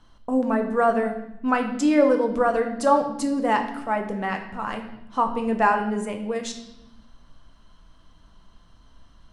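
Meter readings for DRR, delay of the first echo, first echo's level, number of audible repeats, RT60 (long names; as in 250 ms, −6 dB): 4.0 dB, no echo audible, no echo audible, no echo audible, 0.85 s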